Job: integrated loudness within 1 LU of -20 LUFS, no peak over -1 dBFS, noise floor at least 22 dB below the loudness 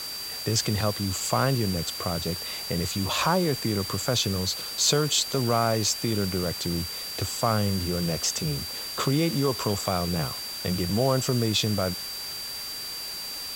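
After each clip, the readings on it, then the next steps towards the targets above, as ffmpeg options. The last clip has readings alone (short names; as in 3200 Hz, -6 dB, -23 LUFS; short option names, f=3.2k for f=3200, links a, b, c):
steady tone 4700 Hz; tone level -34 dBFS; noise floor -35 dBFS; noise floor target -48 dBFS; loudness -26.0 LUFS; peak -8.0 dBFS; loudness target -20.0 LUFS
-> -af "bandreject=f=4.7k:w=30"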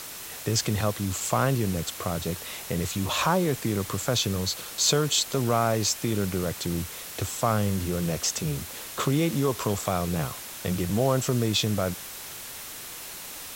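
steady tone none; noise floor -40 dBFS; noise floor target -49 dBFS
-> -af "afftdn=nr=9:nf=-40"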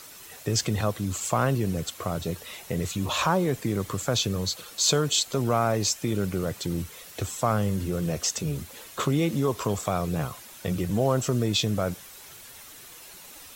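noise floor -46 dBFS; noise floor target -49 dBFS
-> -af "afftdn=nr=6:nf=-46"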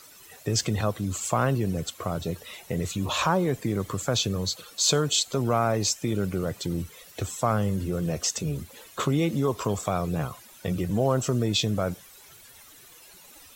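noise floor -51 dBFS; loudness -27.0 LUFS; peak -10.0 dBFS; loudness target -20.0 LUFS
-> -af "volume=7dB"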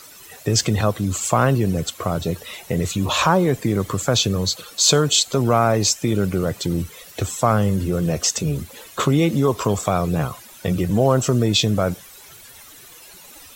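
loudness -20.0 LUFS; peak -3.0 dBFS; noise floor -44 dBFS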